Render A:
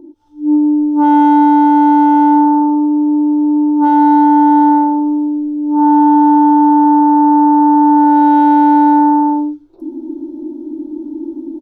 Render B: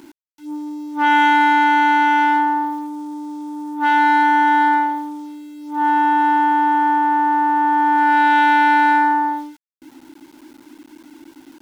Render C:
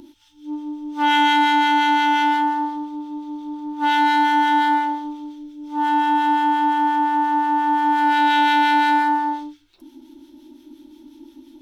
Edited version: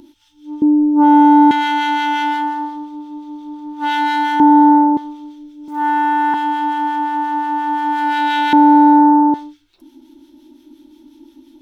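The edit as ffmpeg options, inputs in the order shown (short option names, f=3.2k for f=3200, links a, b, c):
-filter_complex "[0:a]asplit=3[a][b][c];[2:a]asplit=5[d][e][f][g][h];[d]atrim=end=0.622[i];[a]atrim=start=0.618:end=1.512[j];[e]atrim=start=1.508:end=4.402[k];[b]atrim=start=4.398:end=4.972[l];[f]atrim=start=4.968:end=5.682[m];[1:a]atrim=start=5.678:end=6.342[n];[g]atrim=start=6.338:end=8.532[o];[c]atrim=start=8.528:end=9.342[p];[h]atrim=start=9.338[q];[i][j]acrossfade=d=0.004:c1=hsin:c2=hsin[r];[r][k]acrossfade=d=0.004:c1=hsin:c2=hsin[s];[s][l]acrossfade=d=0.004:c1=hsin:c2=hsin[t];[t][m]acrossfade=d=0.004:c1=hsin:c2=hsin[u];[u][n]acrossfade=d=0.004:c1=hsin:c2=hsin[v];[v][o]acrossfade=d=0.004:c1=hsin:c2=hsin[w];[w][p]acrossfade=d=0.004:c1=hsin:c2=hsin[x];[x][q]acrossfade=d=0.004:c1=hsin:c2=hsin"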